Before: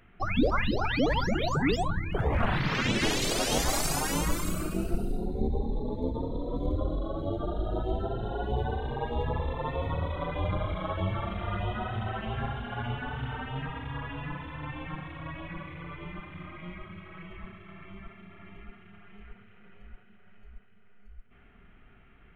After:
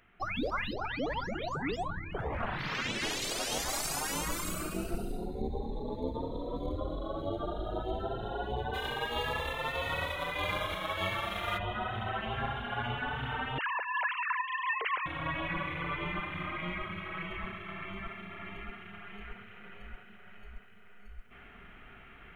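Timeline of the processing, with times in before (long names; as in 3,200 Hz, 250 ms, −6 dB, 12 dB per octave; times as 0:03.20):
0:00.73–0:02.59: high-shelf EQ 3,200 Hz −11 dB
0:08.73–0:11.57: spectral envelope flattened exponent 0.6
0:13.58–0:15.06: three sine waves on the formant tracks
whole clip: speech leveller 0.5 s; low-shelf EQ 430 Hz −9.5 dB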